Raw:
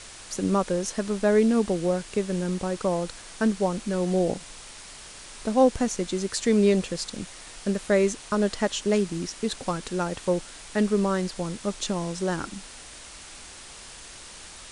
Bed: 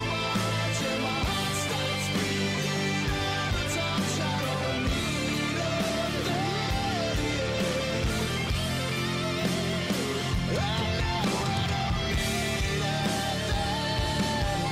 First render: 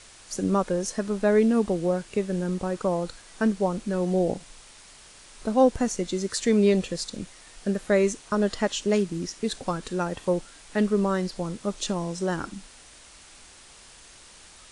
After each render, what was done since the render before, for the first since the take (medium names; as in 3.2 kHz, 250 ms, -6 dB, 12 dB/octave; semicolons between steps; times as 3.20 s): noise print and reduce 6 dB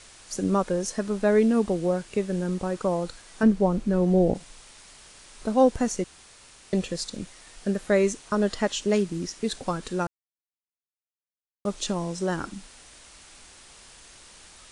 3.43–4.35 s: tilt EQ -2 dB/octave; 6.04–6.73 s: room tone; 10.07–11.65 s: mute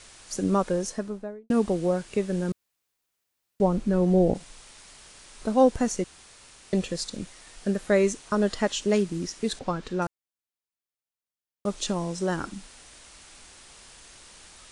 0.74–1.50 s: studio fade out; 2.52–3.60 s: room tone; 9.59–10.02 s: distance through air 110 m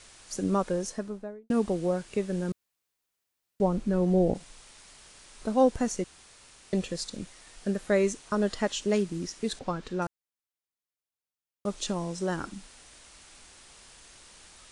trim -3 dB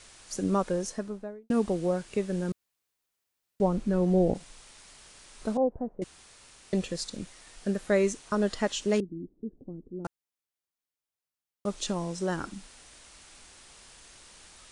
5.57–6.02 s: four-pole ladder low-pass 870 Hz, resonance 30%; 9.00–10.05 s: four-pole ladder low-pass 380 Hz, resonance 45%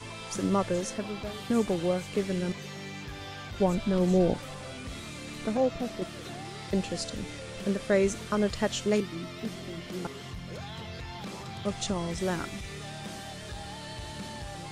add bed -12.5 dB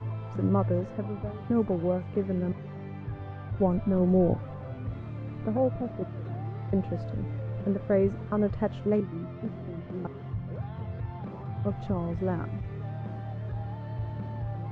low-pass 1.1 kHz 12 dB/octave; peaking EQ 110 Hz +15 dB 0.45 oct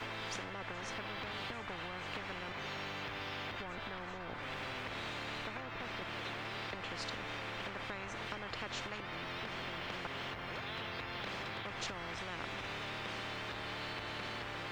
compression 4:1, threshold -33 dBFS, peak gain reduction 12.5 dB; spectrum-flattening compressor 10:1